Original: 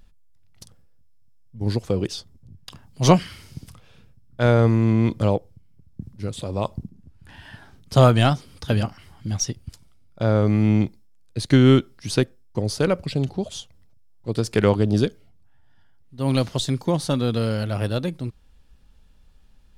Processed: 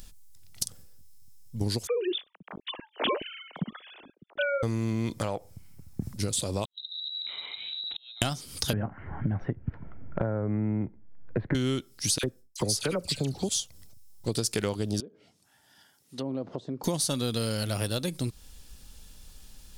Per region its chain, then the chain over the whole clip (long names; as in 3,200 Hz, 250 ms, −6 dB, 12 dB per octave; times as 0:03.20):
0:01.87–0:04.63: three sine waves on the formant tracks + multiband delay without the direct sound highs, lows 50 ms, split 470 Hz
0:05.18–0:06.14: downward compressor 3 to 1, threshold −22 dBFS + flat-topped bell 1,200 Hz +8 dB 2.3 octaves
0:06.65–0:08.22: gate with flip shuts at −10 dBFS, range −42 dB + downward compressor 10 to 1, threshold −47 dBFS + voice inversion scrambler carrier 3,900 Hz
0:08.73–0:11.55: Butterworth low-pass 1,800 Hz + notch filter 1,200 Hz, Q 8.4 + multiband upward and downward compressor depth 70%
0:12.18–0:13.49: noise gate with hold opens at −45 dBFS, closes at −48 dBFS + all-pass dispersion lows, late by 55 ms, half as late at 1,700 Hz
0:15.00–0:16.84: downward compressor 3 to 1, threshold −33 dBFS + high-pass filter 230 Hz + treble cut that deepens with the level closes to 650 Hz, closed at −34.5 dBFS
whole clip: bass and treble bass −3 dB, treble +15 dB; downward compressor 6 to 1, threshold −33 dBFS; parametric band 780 Hz −2 dB 2 octaves; level +7 dB